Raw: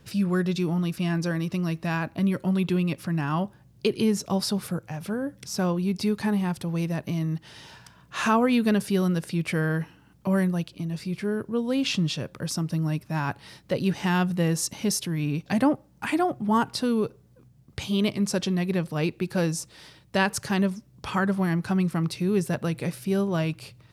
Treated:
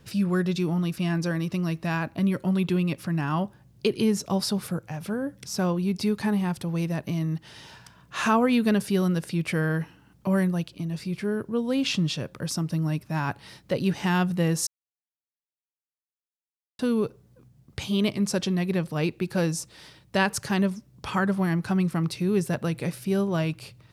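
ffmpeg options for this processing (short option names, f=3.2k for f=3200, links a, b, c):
-filter_complex "[0:a]asplit=3[a][b][c];[a]atrim=end=14.67,asetpts=PTS-STARTPTS,afade=t=out:st=14.666:d=0.004:c=hsin[d];[b]atrim=start=14.67:end=16.79,asetpts=PTS-STARTPTS,volume=0[e];[c]atrim=start=16.79,asetpts=PTS-STARTPTS,afade=t=in:d=0.004:c=hsin[f];[d][e][f]concat=n=3:v=0:a=1"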